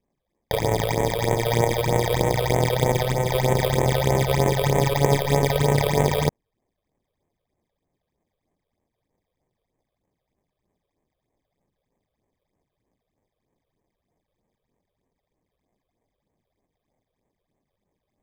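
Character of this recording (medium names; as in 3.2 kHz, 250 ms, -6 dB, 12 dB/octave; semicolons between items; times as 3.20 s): aliases and images of a low sample rate 1.4 kHz, jitter 0%; phasing stages 8, 3.2 Hz, lowest notch 240–4700 Hz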